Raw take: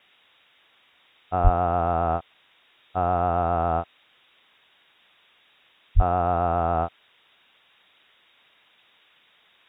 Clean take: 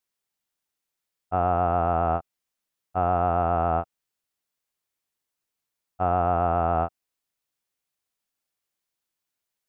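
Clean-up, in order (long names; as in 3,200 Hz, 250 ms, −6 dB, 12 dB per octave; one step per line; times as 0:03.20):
0:01.43–0:01.55: high-pass filter 140 Hz 24 dB per octave
0:05.95–0:06.07: high-pass filter 140 Hz 24 dB per octave
noise reduction from a noise print 23 dB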